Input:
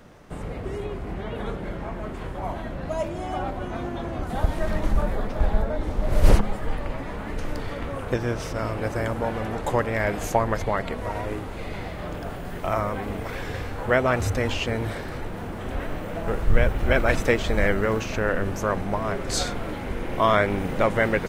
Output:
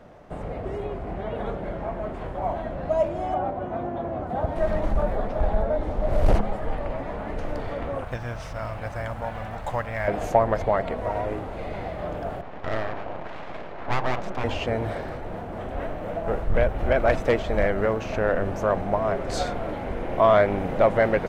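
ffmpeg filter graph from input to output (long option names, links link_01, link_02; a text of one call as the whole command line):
ffmpeg -i in.wav -filter_complex "[0:a]asettb=1/sr,asplit=3[link_01][link_02][link_03];[link_01]atrim=end=3.344[link_04];[link_02]atrim=start=3.34:end=4.56,asetpts=PTS-STARTPTS,afade=type=in:duration=0.004:curve=qsin,afade=type=out:start_time=1.216:duration=0.004:curve=qsin,highpass=75,highshelf=frequency=2600:gain=-11[link_05];[link_03]atrim=start=4.556[link_06];[link_04][link_05]acrossfade=duration=0.004:curve1=hsin:curve2=qsin[link_07];[link_07][link_06]acrossfade=duration=0.004:curve1=qsin:curve2=hsin,asettb=1/sr,asplit=3[link_08][link_09][link_10];[link_08]atrim=end=8.044[link_11];[link_09]atrim=start=8.04:end=10.08,asetpts=PTS-STARTPTS,afade=type=in:duration=0.004:curve=qsin,afade=type=out:start_time=2.036:duration=0.004:curve=qsin,equalizer=frequency=380:width=0.84:gain=-15,acrusher=bits=6:mode=log:mix=0:aa=0.000001[link_12];[link_10]atrim=start=10.076[link_13];[link_11][link_12]acrossfade=duration=0.004:curve1=hsin:curve2=qsin[link_14];[link_14][link_13]acrossfade=duration=0.004:curve1=qsin:curve2=hsin,asettb=1/sr,asplit=3[link_15][link_16][link_17];[link_15]atrim=end=12.414[link_18];[link_16]atrim=start=12.41:end=14.44,asetpts=PTS-STARTPTS,afade=type=in:duration=0.004:curve=qsin,afade=type=out:start_time=2.026:duration=0.004:curve=qsin,highpass=frequency=140:poles=1,aeval=exprs='abs(val(0))':channel_layout=same,adynamicsmooth=sensitivity=7:basefreq=2500[link_19];[link_17]atrim=start=14.436[link_20];[link_18][link_19]acrossfade=duration=0.004:curve1=hsin:curve2=qsin[link_21];[link_21][link_20]acrossfade=duration=0.004:curve1=qsin:curve2=hsin,asettb=1/sr,asplit=3[link_22][link_23][link_24];[link_22]atrim=end=15.094[link_25];[link_23]atrim=start=15.09:end=18.06,asetpts=PTS-STARTPTS,afade=type=in:duration=0.004:curve=qsin,afade=type=out:start_time=2.966:duration=0.004:curve=qsin,tremolo=f=4:d=0.29,aeval=exprs='0.299*(abs(mod(val(0)/0.299+3,4)-2)-1)':channel_layout=same[link_26];[link_24]atrim=start=18.056[link_27];[link_25][link_26]acrossfade=duration=0.004:curve1=hsin:curve2=qsin[link_28];[link_28][link_27]acrossfade=duration=0.004:curve1=qsin:curve2=hsin,highshelf=frequency=4700:gain=-11.5,acontrast=82,equalizer=frequency=660:width=1.9:gain=8.5,volume=-8.5dB" out.wav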